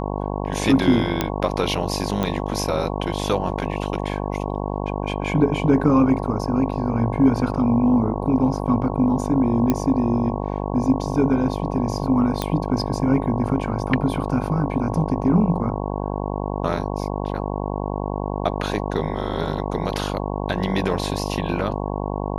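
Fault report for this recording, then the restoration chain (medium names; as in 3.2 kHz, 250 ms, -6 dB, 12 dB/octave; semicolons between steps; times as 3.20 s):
buzz 50 Hz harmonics 22 -26 dBFS
1.21 s: pop -5 dBFS
2.23 s: pop -11 dBFS
9.70 s: pop -7 dBFS
12.42 s: pop -8 dBFS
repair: de-click; de-hum 50 Hz, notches 22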